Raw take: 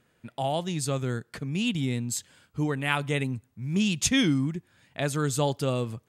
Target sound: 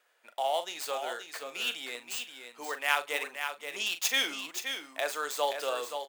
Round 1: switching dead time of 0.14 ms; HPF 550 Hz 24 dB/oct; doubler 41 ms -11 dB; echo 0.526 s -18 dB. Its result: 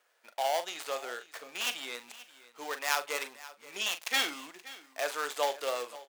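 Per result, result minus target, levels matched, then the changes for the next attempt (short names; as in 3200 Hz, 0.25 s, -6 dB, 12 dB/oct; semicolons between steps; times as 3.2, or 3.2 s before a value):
echo-to-direct -10.5 dB; switching dead time: distortion +5 dB
change: echo 0.526 s -7.5 dB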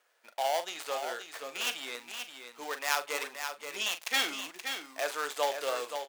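switching dead time: distortion +5 dB
change: switching dead time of 0.035 ms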